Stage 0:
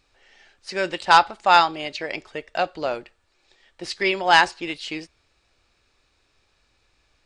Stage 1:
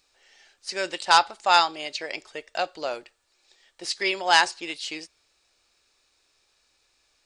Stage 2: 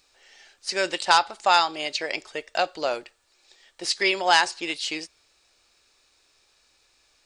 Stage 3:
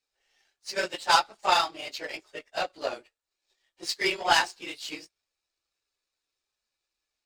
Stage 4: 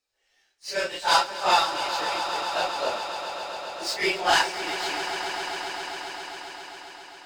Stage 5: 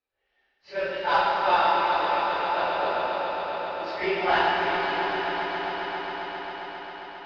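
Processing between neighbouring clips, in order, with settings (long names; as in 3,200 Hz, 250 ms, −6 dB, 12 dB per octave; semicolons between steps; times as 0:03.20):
bass and treble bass −10 dB, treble +10 dB; level −4 dB
downward compressor 2 to 1, threshold −21 dBFS, peak gain reduction 6 dB; level +4 dB
random phases in long frames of 50 ms; power curve on the samples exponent 1.4
random phases in long frames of 100 ms; echo that builds up and dies away 134 ms, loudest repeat 5, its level −13 dB; level +2 dB
Gaussian smoothing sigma 2.8 samples; dense smooth reverb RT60 4.7 s, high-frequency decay 1×, DRR −4 dB; level −2.5 dB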